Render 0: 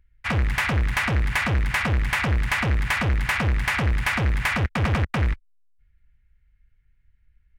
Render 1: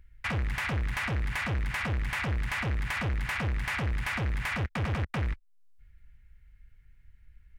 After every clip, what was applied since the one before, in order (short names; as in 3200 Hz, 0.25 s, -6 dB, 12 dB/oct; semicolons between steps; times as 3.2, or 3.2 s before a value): limiter -18.5 dBFS, peak gain reduction 5 dB; compressor 2:1, threshold -44 dBFS, peak gain reduction 12.5 dB; gain +5.5 dB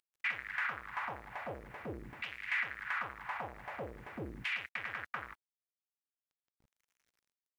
modulation noise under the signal 31 dB; LFO band-pass saw down 0.45 Hz 280–2900 Hz; bit-crush 12-bit; gain +1.5 dB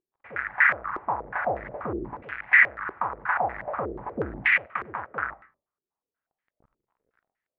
reverb RT60 0.35 s, pre-delay 45 ms, DRR 13.5 dB; stepped low-pass 8.3 Hz 380–1900 Hz; gain +8.5 dB